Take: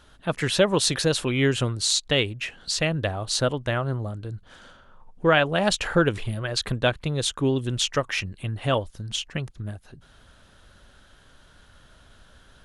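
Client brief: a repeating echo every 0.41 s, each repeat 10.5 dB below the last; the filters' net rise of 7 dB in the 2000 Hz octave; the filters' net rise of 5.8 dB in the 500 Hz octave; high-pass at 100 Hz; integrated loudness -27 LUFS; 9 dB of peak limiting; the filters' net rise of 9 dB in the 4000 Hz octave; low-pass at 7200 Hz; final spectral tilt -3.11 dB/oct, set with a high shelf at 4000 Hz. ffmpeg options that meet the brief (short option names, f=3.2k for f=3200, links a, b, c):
-af "highpass=100,lowpass=7.2k,equalizer=f=500:t=o:g=6.5,equalizer=f=2k:t=o:g=6,highshelf=f=4k:g=5,equalizer=f=4k:t=o:g=6.5,alimiter=limit=-7dB:level=0:latency=1,aecho=1:1:410|820|1230:0.299|0.0896|0.0269,volume=-7dB"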